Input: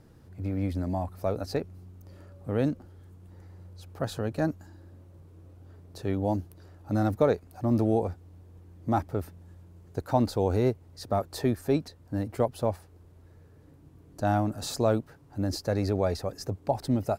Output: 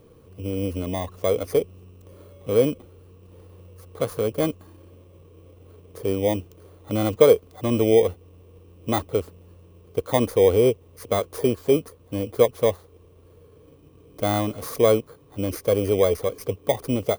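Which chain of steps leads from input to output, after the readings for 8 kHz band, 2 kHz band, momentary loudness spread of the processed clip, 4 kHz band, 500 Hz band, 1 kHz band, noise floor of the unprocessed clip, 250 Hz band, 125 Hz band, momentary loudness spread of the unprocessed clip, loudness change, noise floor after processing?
+7.5 dB, +6.0 dB, 13 LU, +7.0 dB, +9.5 dB, +1.5 dB, -55 dBFS, +2.5 dB, +0.5 dB, 17 LU, +6.5 dB, -53 dBFS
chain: FFT order left unsorted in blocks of 16 samples; small resonant body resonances 470/1100 Hz, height 14 dB, ringing for 25 ms

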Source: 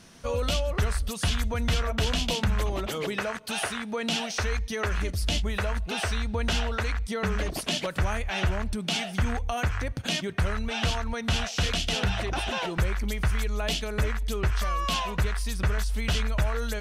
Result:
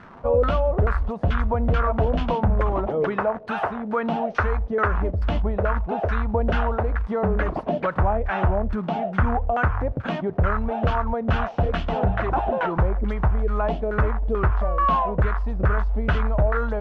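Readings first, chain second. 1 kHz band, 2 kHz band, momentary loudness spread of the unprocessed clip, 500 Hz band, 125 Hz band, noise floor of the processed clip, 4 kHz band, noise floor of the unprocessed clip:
+9.5 dB, +1.5 dB, 3 LU, +9.0 dB, +5.0 dB, -34 dBFS, -13.0 dB, -37 dBFS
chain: crackle 400/s -34 dBFS; LFO low-pass saw down 2.3 Hz 530–1500 Hz; gain +5 dB

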